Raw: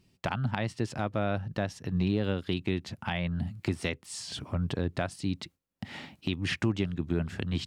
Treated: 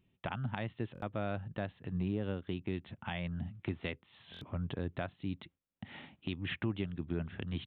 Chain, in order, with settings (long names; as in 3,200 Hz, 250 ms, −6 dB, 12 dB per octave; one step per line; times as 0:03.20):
downsampling to 8,000 Hz
0:01.98–0:02.74: high-shelf EQ 2,900 Hz −9.5 dB
buffer that repeats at 0:00.93/0:04.32, samples 1,024, times 3
level −7 dB